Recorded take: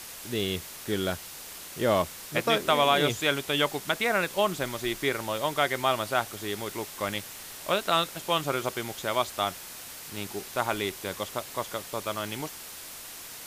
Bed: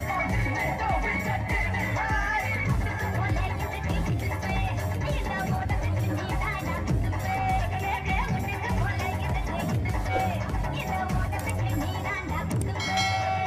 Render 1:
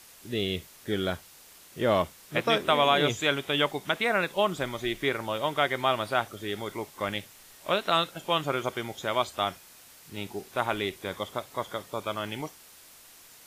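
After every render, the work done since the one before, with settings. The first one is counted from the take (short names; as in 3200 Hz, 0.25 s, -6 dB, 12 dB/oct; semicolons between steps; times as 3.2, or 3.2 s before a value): noise print and reduce 10 dB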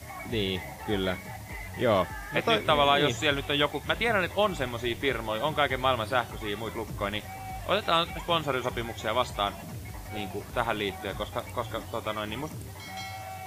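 add bed -13 dB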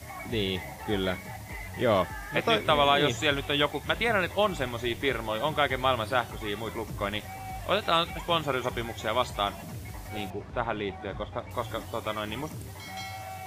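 10.3–11.51 tape spacing loss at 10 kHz 21 dB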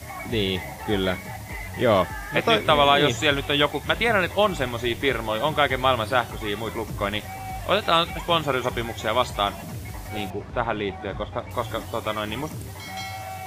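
gain +5 dB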